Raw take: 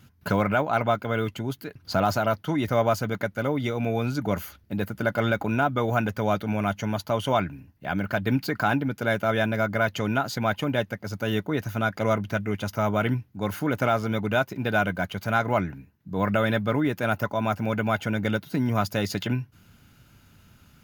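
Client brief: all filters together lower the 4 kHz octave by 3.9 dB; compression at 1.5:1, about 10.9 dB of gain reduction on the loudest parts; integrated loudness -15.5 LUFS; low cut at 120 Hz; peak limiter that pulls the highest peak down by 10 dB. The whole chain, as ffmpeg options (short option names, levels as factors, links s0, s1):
-af "highpass=120,equalizer=f=4000:t=o:g=-5,acompressor=threshold=0.00316:ratio=1.5,volume=17.8,alimiter=limit=0.596:level=0:latency=1"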